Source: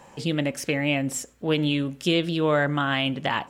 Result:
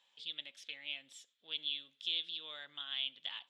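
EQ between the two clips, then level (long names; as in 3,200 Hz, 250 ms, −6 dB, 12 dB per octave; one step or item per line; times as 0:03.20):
resonant band-pass 3,500 Hz, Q 10
0.0 dB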